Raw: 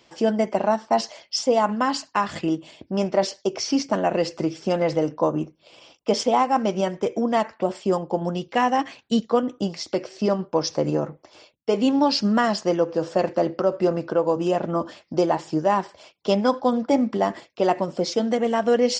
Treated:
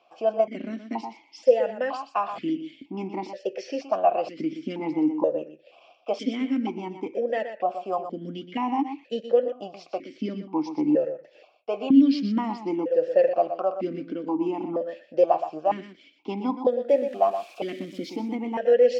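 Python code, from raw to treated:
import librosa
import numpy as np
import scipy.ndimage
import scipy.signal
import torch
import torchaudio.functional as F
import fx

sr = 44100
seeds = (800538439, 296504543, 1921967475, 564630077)

y = fx.crossing_spikes(x, sr, level_db=-25.0, at=(16.89, 18.35))
y = y + 10.0 ** (-9.5 / 20.0) * np.pad(y, (int(122 * sr / 1000.0), 0))[:len(y)]
y = fx.vowel_held(y, sr, hz=2.1)
y = y * librosa.db_to_amplitude(6.5)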